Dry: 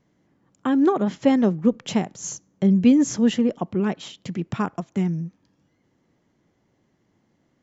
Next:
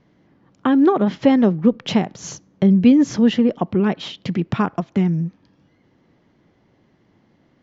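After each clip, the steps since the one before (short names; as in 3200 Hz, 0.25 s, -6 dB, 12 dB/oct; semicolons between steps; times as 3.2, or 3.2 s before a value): LPF 5000 Hz 24 dB/oct; in parallel at +2 dB: compressor, threshold -26 dBFS, peak gain reduction 14 dB; on the sum: gain +1 dB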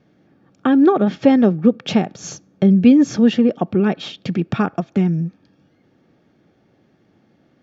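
notch comb 1000 Hz; gain +2 dB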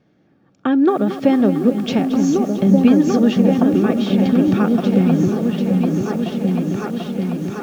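on a send: repeats that get brighter 0.74 s, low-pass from 200 Hz, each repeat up 2 oct, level 0 dB; on the sum: lo-fi delay 0.225 s, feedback 80%, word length 6-bit, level -12.5 dB; gain -2 dB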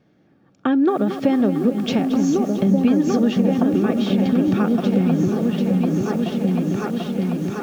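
compressor 2:1, threshold -16 dBFS, peak gain reduction 5.5 dB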